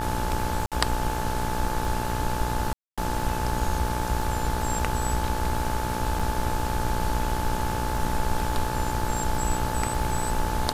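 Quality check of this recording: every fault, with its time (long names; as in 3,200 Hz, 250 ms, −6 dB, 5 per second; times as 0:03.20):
mains buzz 60 Hz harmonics 29 −31 dBFS
surface crackle 28 per second −32 dBFS
whistle 870 Hz −31 dBFS
0:00.66–0:00.72: drop-out 57 ms
0:02.73–0:02.98: drop-out 246 ms
0:06.19–0:06.20: drop-out 5.6 ms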